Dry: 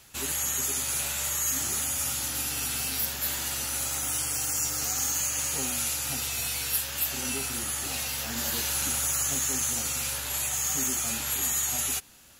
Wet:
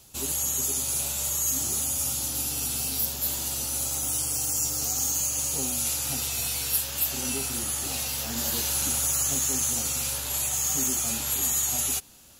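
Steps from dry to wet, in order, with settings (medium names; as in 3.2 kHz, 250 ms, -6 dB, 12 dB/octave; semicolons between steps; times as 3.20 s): peaking EQ 1.8 kHz -13 dB 1.3 oct, from 5.85 s -7 dB; trim +2.5 dB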